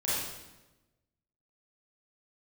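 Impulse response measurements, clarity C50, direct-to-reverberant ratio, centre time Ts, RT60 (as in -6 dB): -3.0 dB, -10.0 dB, 89 ms, 1.1 s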